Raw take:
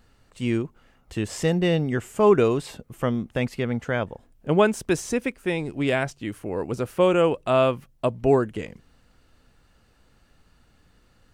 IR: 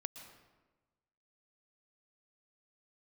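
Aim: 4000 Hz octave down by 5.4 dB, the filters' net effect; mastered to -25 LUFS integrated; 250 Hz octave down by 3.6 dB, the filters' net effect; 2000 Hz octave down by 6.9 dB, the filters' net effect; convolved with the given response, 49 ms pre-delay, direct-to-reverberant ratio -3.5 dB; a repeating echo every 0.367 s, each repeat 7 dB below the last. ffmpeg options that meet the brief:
-filter_complex "[0:a]equalizer=f=250:t=o:g=-5,equalizer=f=2k:t=o:g=-8.5,equalizer=f=4k:t=o:g=-3.5,aecho=1:1:367|734|1101|1468|1835:0.447|0.201|0.0905|0.0407|0.0183,asplit=2[a][b];[1:a]atrim=start_sample=2205,adelay=49[c];[b][c]afir=irnorm=-1:irlink=0,volume=6dB[d];[a][d]amix=inputs=2:normalize=0,volume=-4.5dB"

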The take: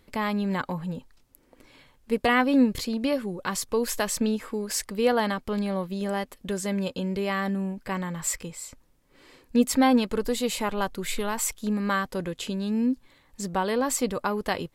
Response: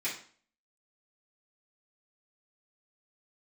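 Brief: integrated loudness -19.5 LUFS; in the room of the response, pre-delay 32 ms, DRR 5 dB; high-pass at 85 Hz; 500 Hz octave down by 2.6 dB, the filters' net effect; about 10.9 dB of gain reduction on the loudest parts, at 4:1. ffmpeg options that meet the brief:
-filter_complex "[0:a]highpass=85,equalizer=f=500:t=o:g=-3,acompressor=threshold=-30dB:ratio=4,asplit=2[a][b];[1:a]atrim=start_sample=2205,adelay=32[c];[b][c]afir=irnorm=-1:irlink=0,volume=-10.5dB[d];[a][d]amix=inputs=2:normalize=0,volume=13.5dB"

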